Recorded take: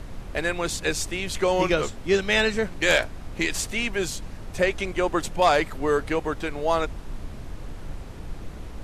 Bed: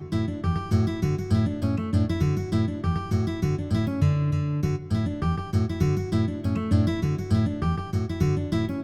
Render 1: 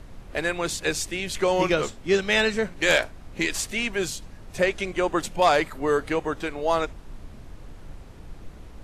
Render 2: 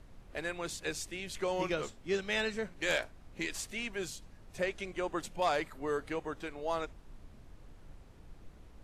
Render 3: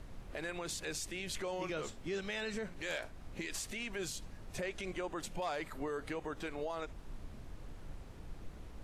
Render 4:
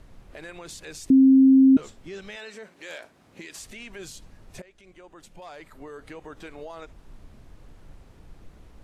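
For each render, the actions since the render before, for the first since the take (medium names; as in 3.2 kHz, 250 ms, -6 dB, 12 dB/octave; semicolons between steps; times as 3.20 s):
noise print and reduce 6 dB
trim -11.5 dB
in parallel at -2 dB: compression, threshold -41 dBFS, peak gain reduction 14 dB; on the sum: peak limiter -30.5 dBFS, peak gain reduction 10.5 dB
1.10–1.77 s: bleep 266 Hz -11 dBFS; 2.35–3.58 s: high-pass 390 Hz -> 120 Hz; 4.62–6.39 s: fade in, from -16.5 dB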